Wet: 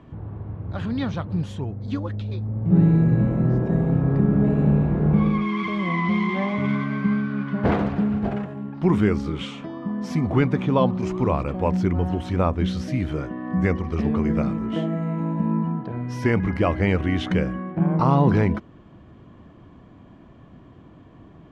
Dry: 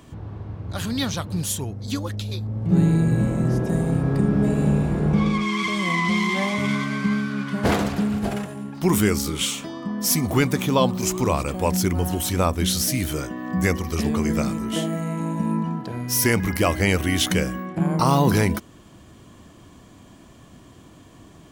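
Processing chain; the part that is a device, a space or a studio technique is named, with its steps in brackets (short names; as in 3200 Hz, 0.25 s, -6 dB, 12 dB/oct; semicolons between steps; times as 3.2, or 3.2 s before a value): phone in a pocket (LPF 3000 Hz 12 dB/oct; bell 150 Hz +2 dB; high shelf 2400 Hz -10 dB)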